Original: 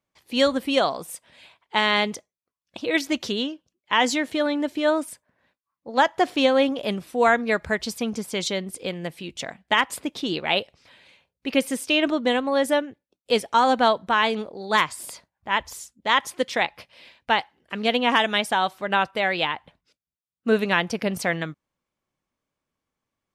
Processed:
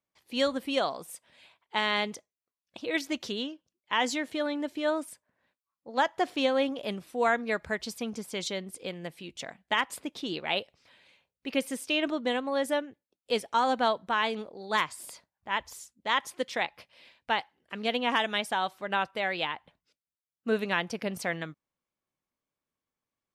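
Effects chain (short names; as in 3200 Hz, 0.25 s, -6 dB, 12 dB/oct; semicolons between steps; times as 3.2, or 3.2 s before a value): low shelf 130 Hz -4 dB; gain -7 dB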